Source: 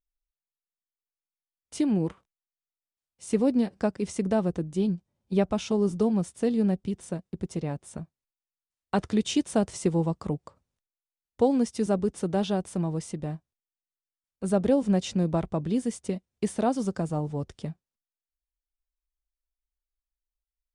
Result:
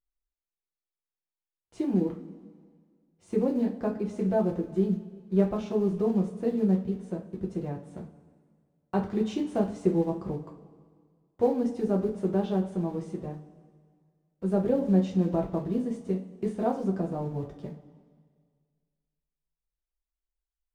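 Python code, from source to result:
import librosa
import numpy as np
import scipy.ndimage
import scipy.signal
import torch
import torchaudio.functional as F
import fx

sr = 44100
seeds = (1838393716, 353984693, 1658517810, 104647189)

y = fx.block_float(x, sr, bits=5)
y = fx.lowpass(y, sr, hz=1000.0, slope=6)
y = fx.rev_double_slope(y, sr, seeds[0], early_s=0.28, late_s=1.9, knee_db=-18, drr_db=-1.0)
y = F.gain(torch.from_numpy(y), -4.0).numpy()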